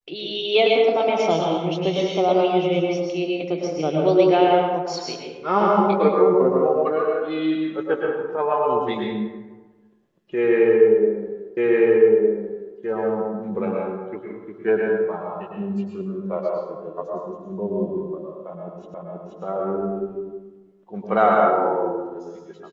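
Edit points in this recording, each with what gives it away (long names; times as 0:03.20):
0:11.57: the same again, the last 1.21 s
0:18.94: the same again, the last 0.48 s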